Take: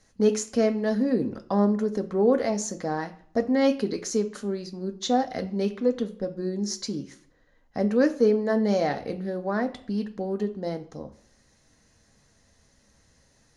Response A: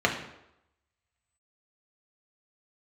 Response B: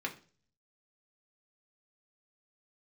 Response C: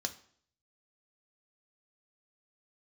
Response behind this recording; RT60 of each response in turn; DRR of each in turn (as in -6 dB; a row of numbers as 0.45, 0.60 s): C; 0.85, 0.40, 0.55 s; 0.0, -0.5, 5.5 dB